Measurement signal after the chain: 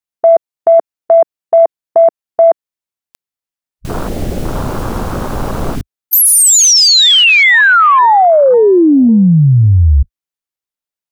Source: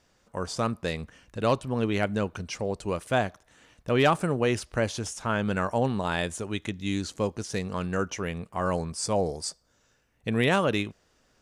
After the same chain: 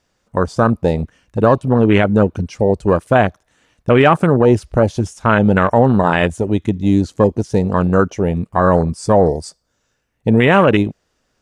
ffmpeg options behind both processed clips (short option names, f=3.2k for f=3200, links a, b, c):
-af "afwtdn=0.0282,alimiter=level_in=17dB:limit=-1dB:release=50:level=0:latency=1,volume=-1dB"